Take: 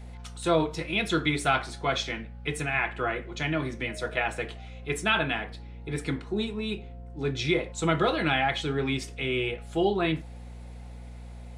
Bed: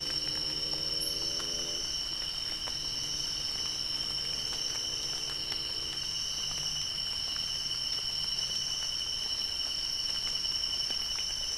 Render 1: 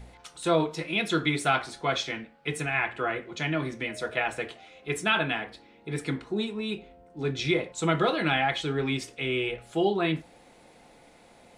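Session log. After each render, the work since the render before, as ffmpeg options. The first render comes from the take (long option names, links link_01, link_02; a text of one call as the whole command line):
ffmpeg -i in.wav -af "bandreject=frequency=60:width_type=h:width=4,bandreject=frequency=120:width_type=h:width=4,bandreject=frequency=180:width_type=h:width=4,bandreject=frequency=240:width_type=h:width=4" out.wav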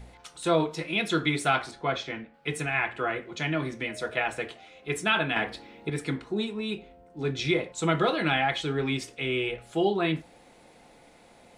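ffmpeg -i in.wav -filter_complex "[0:a]asettb=1/sr,asplit=3[link_01][link_02][link_03];[link_01]atrim=end=1.714[link_04];[link_02]atrim=start=1.71:end=2.34,asetpts=PTS-STARTPTS,afade=type=in:duration=0.004:curve=qsin,afade=type=out:start_time=0.626:duration=0.004:curve=qsin,lowpass=frequency=2200:poles=1[link_05];[link_03]atrim=start=2.336[link_06];[link_04][link_05]acrossfade=duration=0.004:curve1=hsin:curve2=qsin[link_07];[link_07][link_06]acrossfade=duration=0.004:curve1=qsin:curve2=hsin,asettb=1/sr,asplit=3[link_08][link_09][link_10];[link_08]atrim=end=5.364[link_11];[link_09]atrim=start=5.36:end=5.9,asetpts=PTS-STARTPTS,afade=type=in:duration=0.004:curve=qsin,afade=type=out:start_time=0.536:duration=0.004:curve=qsin,acontrast=75[link_12];[link_10]atrim=start=5.896[link_13];[link_11][link_12]acrossfade=duration=0.004:curve1=hsin:curve2=qsin[link_14];[link_14][link_13]acrossfade=duration=0.004:curve1=qsin:curve2=hsin" out.wav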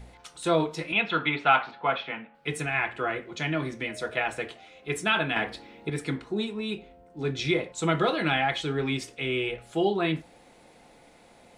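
ffmpeg -i in.wav -filter_complex "[0:a]asettb=1/sr,asplit=3[link_01][link_02][link_03];[link_01]atrim=end=0.924[link_04];[link_02]atrim=start=0.92:end=2.35,asetpts=PTS-STARTPTS,afade=type=in:duration=0.004:curve=qsin,afade=type=out:start_time=1.426:duration=0.004:curve=qsin,highpass=180,equalizer=frequency=350:width_type=q:width=4:gain=-9,equalizer=frequency=880:width_type=q:width=4:gain=8,equalizer=frequency=1300:width_type=q:width=4:gain=5,equalizer=frequency=2700:width_type=q:width=4:gain=6,lowpass=frequency=3500:width=0.5412,lowpass=frequency=3500:width=1.3066[link_05];[link_03]atrim=start=2.346[link_06];[link_04][link_05]acrossfade=duration=0.004:curve1=hsin:curve2=qsin[link_07];[link_07][link_06]acrossfade=duration=0.004:curve1=qsin:curve2=hsin" out.wav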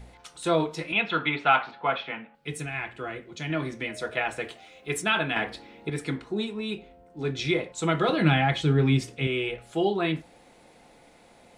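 ffmpeg -i in.wav -filter_complex "[0:a]asettb=1/sr,asplit=3[link_01][link_02][link_03];[link_01]atrim=end=2.354[link_04];[link_02]atrim=start=2.35:end=3.5,asetpts=PTS-STARTPTS,afade=type=in:duration=0.004:curve=qsin,afade=type=out:start_time=1.146:duration=0.004:curve=qsin,equalizer=frequency=1100:width=0.37:gain=-7.5[link_05];[link_03]atrim=start=3.496[link_06];[link_04][link_05]acrossfade=duration=0.004:curve1=hsin:curve2=qsin[link_07];[link_07][link_06]acrossfade=duration=0.004:curve1=qsin:curve2=hsin,asettb=1/sr,asplit=3[link_08][link_09][link_10];[link_08]atrim=end=4.444[link_11];[link_09]atrim=start=4.44:end=5.02,asetpts=PTS-STARTPTS,afade=type=in:duration=0.004:curve=qsin,afade=type=out:start_time=0.576:duration=0.004:curve=qsin,highshelf=frequency=7600:gain=8.5[link_12];[link_10]atrim=start=5.016[link_13];[link_11][link_12]acrossfade=duration=0.004:curve1=hsin:curve2=qsin[link_14];[link_14][link_13]acrossfade=duration=0.004:curve1=qsin:curve2=hsin,asettb=1/sr,asplit=3[link_15][link_16][link_17];[link_15]atrim=end=8.094[link_18];[link_16]atrim=start=8.09:end=9.27,asetpts=PTS-STARTPTS,afade=type=in:duration=0.004:curve=qsin,afade=type=out:start_time=1.176:duration=0.004:curve=qsin,equalizer=frequency=130:width=0.63:gain=12[link_19];[link_17]atrim=start=9.266[link_20];[link_18][link_19]acrossfade=duration=0.004:curve1=hsin:curve2=qsin[link_21];[link_21][link_20]acrossfade=duration=0.004:curve1=qsin:curve2=hsin" out.wav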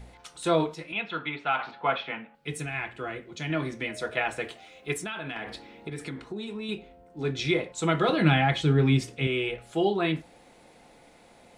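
ffmpeg -i in.wav -filter_complex "[0:a]asettb=1/sr,asplit=3[link_01][link_02][link_03];[link_01]atrim=end=4.934[link_04];[link_02]atrim=start=4.93:end=6.69,asetpts=PTS-STARTPTS,afade=type=in:duration=0.004:curve=qsin,afade=type=out:start_time=1.756:duration=0.004:curve=qsin,acompressor=threshold=-31dB:ratio=10:attack=3.2:release=140:knee=1:detection=peak[link_05];[link_03]atrim=start=6.686[link_06];[link_04][link_05]acrossfade=duration=0.004:curve1=hsin:curve2=qsin[link_07];[link_07][link_06]acrossfade=duration=0.004:curve1=qsin:curve2=hsin,asplit=3[link_08][link_09][link_10];[link_08]atrim=end=0.742[link_11];[link_09]atrim=start=0.738:end=1.592,asetpts=PTS-STARTPTS,volume=-6.5dB[link_12];[link_10]atrim=start=1.588[link_13];[link_11][link_12]acrossfade=duration=0.004:curve1=hsin:curve2=hsin[link_14];[link_14][link_13]acrossfade=duration=0.004:curve1=hsin:curve2=hsin" out.wav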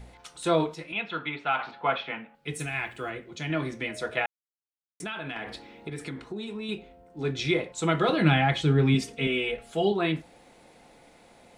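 ffmpeg -i in.wav -filter_complex "[0:a]asplit=3[link_01][link_02][link_03];[link_01]afade=type=out:start_time=2.59:duration=0.02[link_04];[link_02]aemphasis=mode=production:type=50kf,afade=type=in:start_time=2.59:duration=0.02,afade=type=out:start_time=3.09:duration=0.02[link_05];[link_03]afade=type=in:start_time=3.09:duration=0.02[link_06];[link_04][link_05][link_06]amix=inputs=3:normalize=0,asettb=1/sr,asplit=3[link_07][link_08][link_09];[link_07]atrim=end=8.944[link_10];[link_08]atrim=start=8.94:end=9.92,asetpts=PTS-STARTPTS,afade=type=in:duration=0.004:curve=qsin,afade=type=out:start_time=0.976:duration=0.004:curve=qsin,aecho=1:1:4.4:0.65,atrim=end_sample=43218[link_11];[link_09]atrim=start=9.916[link_12];[link_10][link_11]acrossfade=duration=0.004:curve1=hsin:curve2=qsin[link_13];[link_13][link_12]acrossfade=duration=0.004:curve1=qsin:curve2=hsin,asplit=3[link_14][link_15][link_16];[link_14]atrim=end=4.26,asetpts=PTS-STARTPTS,afade=type=out:start_time=4.256:duration=0.004:curve=hsin[link_17];[link_15]atrim=start=4.26:end=5,asetpts=PTS-STARTPTS,volume=0[link_18];[link_16]atrim=start=5,asetpts=PTS-STARTPTS,afade=type=in:duration=0.004:curve=hsin[link_19];[link_17][link_18][link_19]concat=n=3:v=0:a=1" out.wav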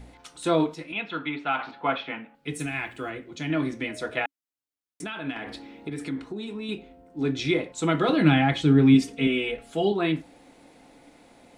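ffmpeg -i in.wav -af "equalizer=frequency=280:width_type=o:width=0.27:gain=11.5" out.wav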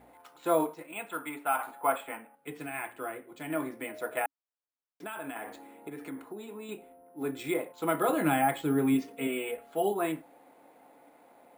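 ffmpeg -i in.wav -af "bandpass=frequency=830:width_type=q:width=1:csg=0,acrusher=samples=4:mix=1:aa=0.000001" out.wav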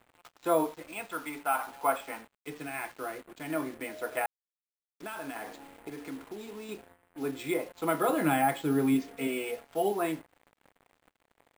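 ffmpeg -i in.wav -af "acrusher=bits=7:mix=0:aa=0.5" out.wav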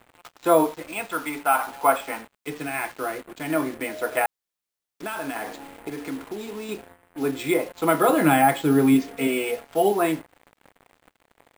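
ffmpeg -i in.wav -af "volume=8.5dB" out.wav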